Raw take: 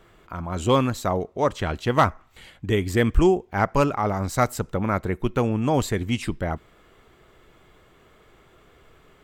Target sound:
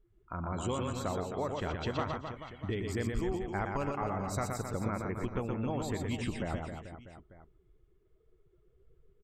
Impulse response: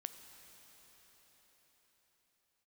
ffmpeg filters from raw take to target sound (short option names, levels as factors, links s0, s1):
-filter_complex "[0:a]afftdn=nr=28:nf=-43,acompressor=threshold=0.0447:ratio=6,asplit=2[s0][s1];[s1]aecho=0:1:120|264|436.8|644.2|893:0.631|0.398|0.251|0.158|0.1[s2];[s0][s2]amix=inputs=2:normalize=0,volume=0.562"